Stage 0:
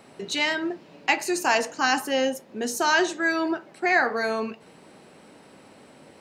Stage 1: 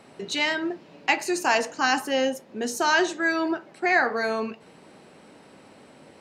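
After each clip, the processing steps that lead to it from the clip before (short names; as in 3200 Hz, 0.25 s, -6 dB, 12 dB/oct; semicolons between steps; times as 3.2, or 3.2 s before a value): high shelf 12000 Hz -8 dB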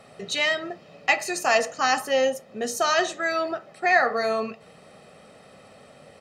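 comb 1.6 ms, depth 66%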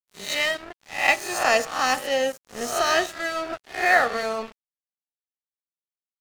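spectral swells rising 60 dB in 0.65 s; crossover distortion -31 dBFS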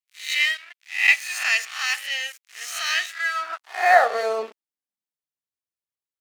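high-pass sweep 2200 Hz -> 69 Hz, 3.03–5.81; gain -1.5 dB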